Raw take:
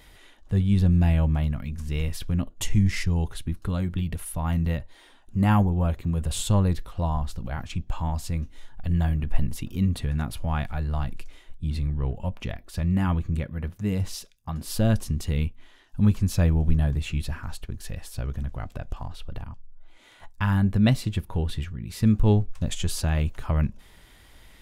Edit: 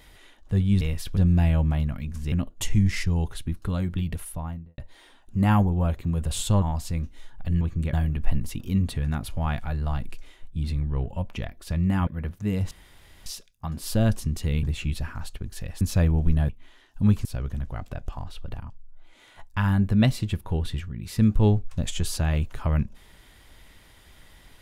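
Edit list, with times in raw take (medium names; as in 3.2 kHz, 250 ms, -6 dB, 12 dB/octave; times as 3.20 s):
1.96–2.32 s: move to 0.81 s
4.15–4.78 s: studio fade out
6.62–8.01 s: delete
13.14–13.46 s: move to 9.00 s
14.10 s: insert room tone 0.55 s
15.47–16.23 s: swap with 16.91–18.09 s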